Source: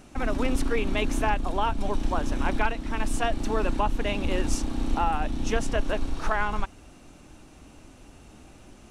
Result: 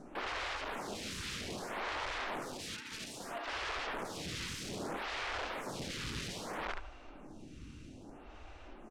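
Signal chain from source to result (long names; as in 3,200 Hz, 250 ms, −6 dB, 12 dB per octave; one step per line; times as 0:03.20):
floating-point word with a short mantissa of 2 bits
0:02.38–0:03.48: high-pass filter 740 Hz 12 dB per octave
repeating echo 72 ms, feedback 39%, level −9 dB
brickwall limiter −17 dBFS, peak gain reduction 6.5 dB
wrap-around overflow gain 31.5 dB
Bessel low-pass filter 4,100 Hz, order 2
phaser with staggered stages 0.62 Hz
level +1.5 dB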